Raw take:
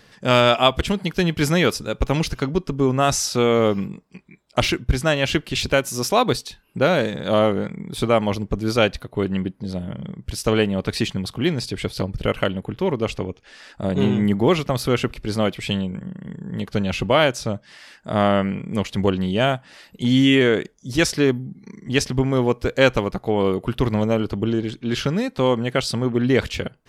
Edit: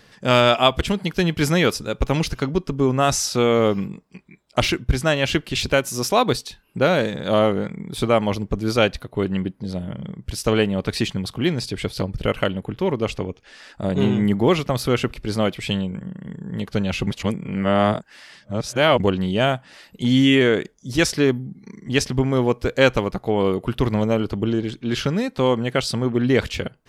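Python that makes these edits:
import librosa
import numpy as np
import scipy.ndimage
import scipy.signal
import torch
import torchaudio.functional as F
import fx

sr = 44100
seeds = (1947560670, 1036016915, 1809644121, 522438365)

y = fx.edit(x, sr, fx.reverse_span(start_s=17.07, length_s=1.93), tone=tone)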